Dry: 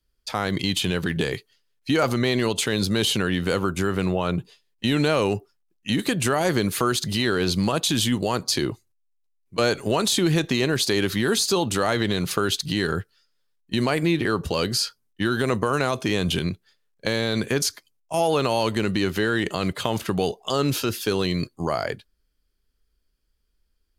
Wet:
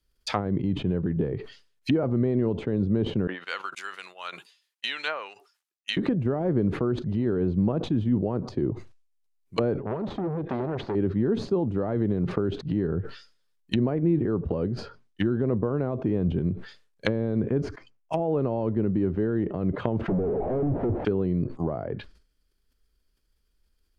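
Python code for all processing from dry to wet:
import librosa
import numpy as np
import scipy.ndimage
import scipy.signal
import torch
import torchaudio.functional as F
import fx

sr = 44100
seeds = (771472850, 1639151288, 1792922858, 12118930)

y = fx.chain(x, sr, fx.highpass(hz=1100.0, slope=12),
    fx.upward_expand(threshold_db=-45.0, expansion=2.5), at=(3.27, 5.97))
y = fx.chain(y, sr, fx.median_filter(points=5),
    fx.transformer_sat(knee_hz=1400.0), at=(9.8, 10.95))
y = fx.chain(y, sr, fx.env_lowpass(base_hz=2500.0, full_db=-21.5),
    fx.peak_eq(hz=3700.0, db=-9.0, octaves=0.49), at=(17.61, 18.13))
y = fx.chain(y, sr, fx.clip_1bit(),
    fx.steep_lowpass(hz=820.0, slope=48),
    fx.power_curve(exponent=0.5), at=(20.08, 21.05))
y = fx.env_lowpass_down(y, sr, base_hz=430.0, full_db=-22.0)
y = fx.dynamic_eq(y, sr, hz=2100.0, q=0.79, threshold_db=-48.0, ratio=4.0, max_db=4)
y = fx.sustainer(y, sr, db_per_s=110.0)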